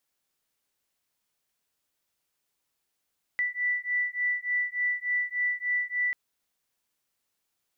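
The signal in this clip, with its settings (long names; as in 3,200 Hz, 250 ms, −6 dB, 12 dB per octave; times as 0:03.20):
two tones that beat 1,970 Hz, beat 3.4 Hz, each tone −29 dBFS 2.74 s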